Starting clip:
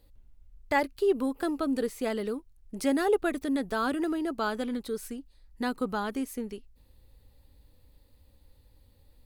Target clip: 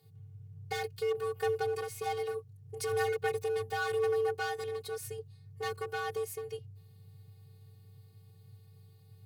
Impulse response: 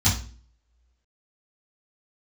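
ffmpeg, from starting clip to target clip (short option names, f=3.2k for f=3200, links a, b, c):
-af "volume=29.5dB,asoftclip=hard,volume=-29.5dB,afftfilt=real='hypot(re,im)*cos(PI*b)':imag='0':win_size=512:overlap=0.75,afreqshift=98,volume=3dB"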